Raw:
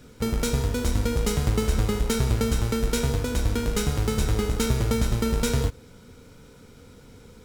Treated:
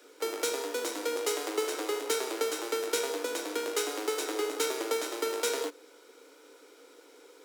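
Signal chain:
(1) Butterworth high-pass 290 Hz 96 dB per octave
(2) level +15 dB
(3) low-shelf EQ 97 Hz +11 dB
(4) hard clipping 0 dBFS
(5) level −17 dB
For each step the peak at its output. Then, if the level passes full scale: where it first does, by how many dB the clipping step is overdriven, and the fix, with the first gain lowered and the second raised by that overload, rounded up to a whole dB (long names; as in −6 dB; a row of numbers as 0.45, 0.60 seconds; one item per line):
−11.0, +4.0, +4.0, 0.0, −17.0 dBFS
step 2, 4.0 dB
step 2 +11 dB, step 5 −13 dB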